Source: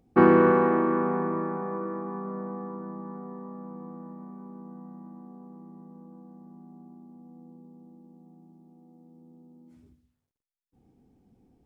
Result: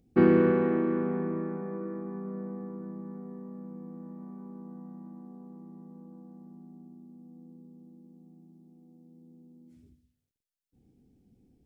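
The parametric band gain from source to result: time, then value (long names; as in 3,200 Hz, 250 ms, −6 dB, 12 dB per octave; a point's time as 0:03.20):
parametric band 990 Hz 1.4 octaves
0:03.87 −14 dB
0:04.31 −6 dB
0:06.39 −6 dB
0:06.96 −14 dB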